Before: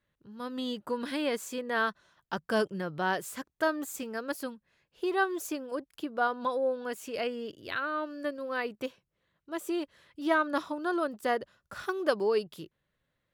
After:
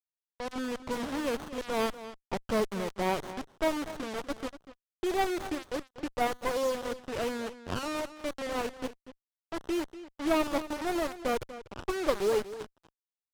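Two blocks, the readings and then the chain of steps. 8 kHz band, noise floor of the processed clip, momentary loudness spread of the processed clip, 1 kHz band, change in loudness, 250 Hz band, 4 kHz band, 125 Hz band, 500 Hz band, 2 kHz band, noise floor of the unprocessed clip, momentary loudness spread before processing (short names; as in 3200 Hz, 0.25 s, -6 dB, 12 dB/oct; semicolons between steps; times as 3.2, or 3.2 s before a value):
+1.0 dB, under -85 dBFS, 11 LU, -1.0 dB, -0.5 dB, +0.5 dB, +1.0 dB, +3.5 dB, 0.0 dB, -5.0 dB, -82 dBFS, 11 LU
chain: bit-crush 6-bit; on a send: echo 0.242 s -14 dB; on the sum: low-pass opened by the level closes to 2700 Hz, open at -26.5 dBFS; running maximum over 17 samples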